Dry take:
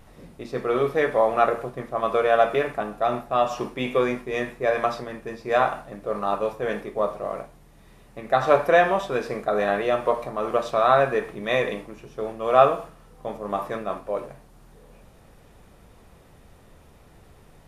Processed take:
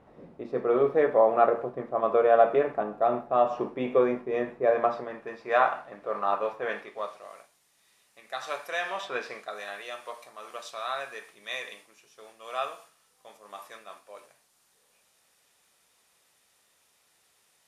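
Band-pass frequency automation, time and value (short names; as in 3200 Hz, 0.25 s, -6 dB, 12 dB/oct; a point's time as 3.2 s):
band-pass, Q 0.63
4.79 s 490 Hz
5.39 s 1300 Hz
6.63 s 1300 Hz
7.33 s 7300 Hz
8.78 s 7300 Hz
9.16 s 1900 Hz
9.61 s 7700 Hz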